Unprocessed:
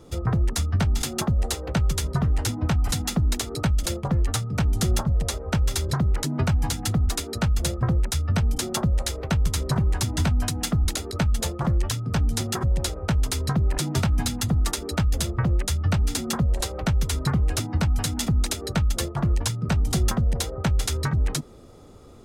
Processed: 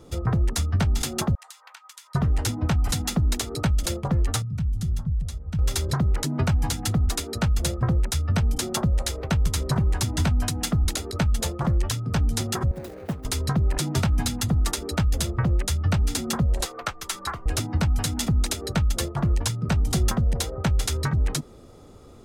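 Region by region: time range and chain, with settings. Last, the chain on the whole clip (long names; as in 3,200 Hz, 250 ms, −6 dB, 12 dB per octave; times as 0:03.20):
0:01.35–0:02.15: elliptic high-pass filter 950 Hz, stop band 80 dB + downward compressor, threshold −42 dBFS
0:04.42–0:05.59: drawn EQ curve 160 Hz 0 dB, 420 Hz −21 dB, 3,600 Hz −13 dB + downward compressor 1.5 to 1, threshold −26 dBFS
0:12.71–0:13.25: running median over 41 samples + high-pass filter 180 Hz + high-shelf EQ 10,000 Hz +12 dB
0:16.65–0:17.46: high-pass filter 940 Hz 6 dB per octave + parametric band 1,300 Hz +7 dB 0.84 octaves + frequency shifter −66 Hz
whole clip: no processing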